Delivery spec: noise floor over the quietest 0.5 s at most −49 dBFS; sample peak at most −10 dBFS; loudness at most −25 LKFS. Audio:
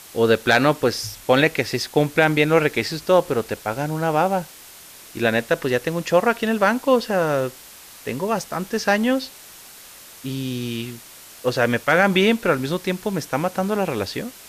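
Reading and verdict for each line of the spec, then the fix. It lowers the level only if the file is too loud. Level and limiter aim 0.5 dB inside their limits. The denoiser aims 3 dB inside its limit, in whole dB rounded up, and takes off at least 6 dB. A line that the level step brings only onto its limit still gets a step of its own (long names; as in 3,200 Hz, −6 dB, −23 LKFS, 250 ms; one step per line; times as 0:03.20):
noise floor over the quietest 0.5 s −43 dBFS: out of spec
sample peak −3.5 dBFS: out of spec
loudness −21.0 LKFS: out of spec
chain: broadband denoise 6 dB, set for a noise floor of −43 dBFS
level −4.5 dB
brickwall limiter −10.5 dBFS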